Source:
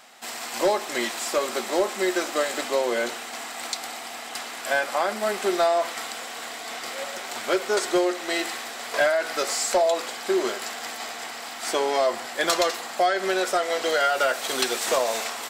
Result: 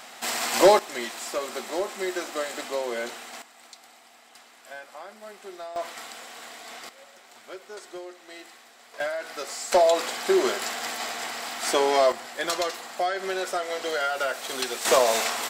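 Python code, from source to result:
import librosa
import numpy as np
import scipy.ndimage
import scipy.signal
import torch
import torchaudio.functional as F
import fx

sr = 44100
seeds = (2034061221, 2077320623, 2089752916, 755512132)

y = fx.gain(x, sr, db=fx.steps((0.0, 6.0), (0.79, -5.5), (3.42, -17.5), (5.76, -7.0), (6.89, -17.5), (9.0, -8.5), (9.72, 2.0), (12.12, -5.0), (14.85, 3.5)))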